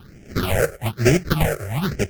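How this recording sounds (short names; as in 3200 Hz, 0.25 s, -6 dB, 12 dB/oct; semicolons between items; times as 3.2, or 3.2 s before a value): aliases and images of a low sample rate 1000 Hz, jitter 20%; phasing stages 6, 1.1 Hz, lowest notch 240–1100 Hz; MP3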